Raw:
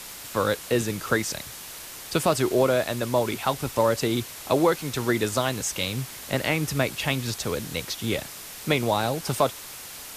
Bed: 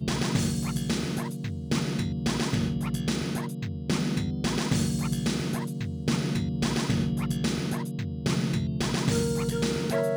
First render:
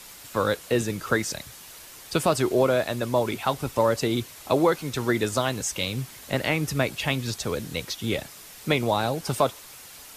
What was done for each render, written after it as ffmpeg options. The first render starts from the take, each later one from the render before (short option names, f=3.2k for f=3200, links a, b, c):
-af "afftdn=nr=6:nf=-40"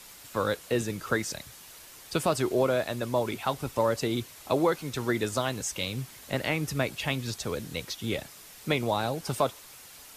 -af "volume=-4dB"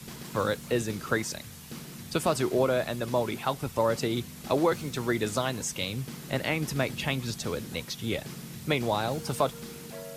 -filter_complex "[1:a]volume=-15.5dB[a];[0:a][a]amix=inputs=2:normalize=0"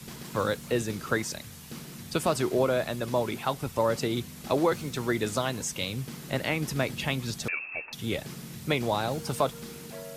-filter_complex "[0:a]asettb=1/sr,asplit=3[a][b][c];[a]atrim=end=7.484[d];[b]atrim=start=7.48:end=7.93,asetpts=PTS-STARTPTS,afade=t=in:d=0.004:c=qsin,afade=t=out:st=0.446:d=0.004:c=qsin,lowpass=f=2.4k:t=q:w=0.5098,lowpass=f=2.4k:t=q:w=0.6013,lowpass=f=2.4k:t=q:w=0.9,lowpass=f=2.4k:t=q:w=2.563,afreqshift=-2800[e];[c]atrim=start=7.926[f];[d][e]acrossfade=d=0.004:c1=hsin:c2=qsin[g];[g][f]acrossfade=d=0.004:c1=qsin:c2=hsin"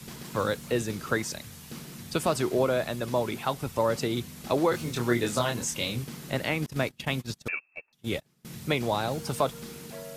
-filter_complex "[0:a]asettb=1/sr,asplit=3[a][b][c];[a]atrim=end=4.714[d];[b]atrim=start=4.71:end=6.04,asetpts=PTS-STARTPTS,afade=t=in:d=0.004:c=qsin,afade=t=out:st=1.326:d=0.004:c=qsin,asplit=2[e][f];[f]adelay=25,volume=-3dB[g];[e][g]amix=inputs=2:normalize=0,atrim=end_sample=58653[h];[c]atrim=start=6.036[i];[d][h]acrossfade=d=0.004:c1=hsin:c2=qsin[j];[j][i]acrossfade=d=0.004:c1=qsin:c2=hsin,asettb=1/sr,asplit=3[k][l][m];[k]atrim=end=6.664[n];[l]atrim=start=6.66:end=8.45,asetpts=PTS-STARTPTS,afade=t=in:d=0.004:c=qsin,afade=t=out:st=1.786:d=0.004:c=qsin,agate=range=-28dB:threshold=-33dB:ratio=16:release=100:detection=peak[o];[m]atrim=start=8.446[p];[n][o]acrossfade=d=0.004:c1=hsin:c2=qsin[q];[q][p]acrossfade=d=0.004:c1=qsin:c2=hsin"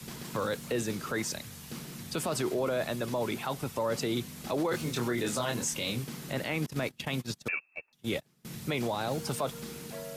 -filter_complex "[0:a]acrossover=split=110|2600[a][b][c];[a]acompressor=threshold=-52dB:ratio=6[d];[d][b][c]amix=inputs=3:normalize=0,alimiter=limit=-22dB:level=0:latency=1:release=12"